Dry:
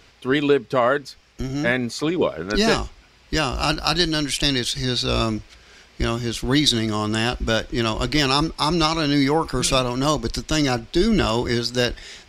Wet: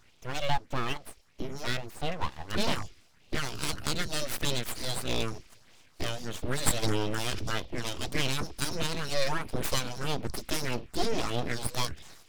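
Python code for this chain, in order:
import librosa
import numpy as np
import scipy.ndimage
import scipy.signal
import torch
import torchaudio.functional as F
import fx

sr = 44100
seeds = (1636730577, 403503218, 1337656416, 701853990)

y = fx.phaser_stages(x, sr, stages=4, low_hz=110.0, high_hz=1500.0, hz=1.6, feedback_pct=25)
y = np.abs(y)
y = fx.sustainer(y, sr, db_per_s=24.0, at=(6.82, 7.57), fade=0.02)
y = y * librosa.db_to_amplitude(-5.5)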